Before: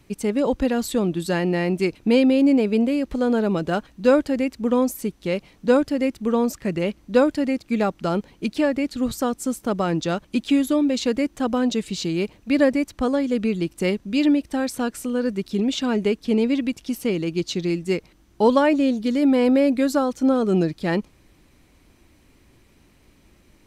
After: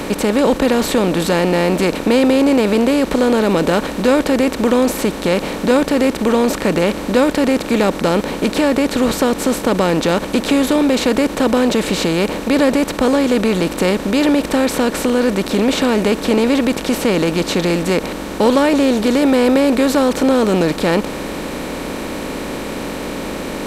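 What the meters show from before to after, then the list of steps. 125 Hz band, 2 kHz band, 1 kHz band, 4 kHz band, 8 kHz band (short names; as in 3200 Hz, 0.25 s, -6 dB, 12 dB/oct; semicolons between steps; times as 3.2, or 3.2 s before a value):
+6.5 dB, +9.0 dB, +8.5 dB, +10.5 dB, +10.5 dB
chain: per-bin compression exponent 0.4; in parallel at -1.5 dB: limiter -12 dBFS, peak gain reduction 11 dB; on the sum: gain -2.5 dB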